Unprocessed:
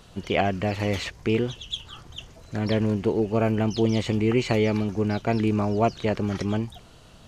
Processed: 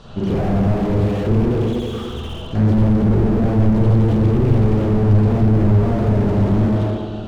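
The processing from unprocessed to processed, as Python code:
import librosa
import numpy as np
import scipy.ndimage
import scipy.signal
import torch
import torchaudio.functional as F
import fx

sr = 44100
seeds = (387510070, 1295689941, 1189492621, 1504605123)

p1 = scipy.signal.sosfilt(scipy.signal.butter(2, 4400.0, 'lowpass', fs=sr, output='sos'), x)
p2 = fx.peak_eq(p1, sr, hz=2100.0, db=-10.0, octaves=0.53)
p3 = p2 + fx.echo_bbd(p2, sr, ms=292, stages=2048, feedback_pct=35, wet_db=-12.0, dry=0)
p4 = fx.rev_spring(p3, sr, rt60_s=1.3, pass_ms=(38, 46, 51), chirp_ms=50, drr_db=-7.5)
p5 = fx.slew_limit(p4, sr, full_power_hz=19.0)
y = p5 * librosa.db_to_amplitude(7.5)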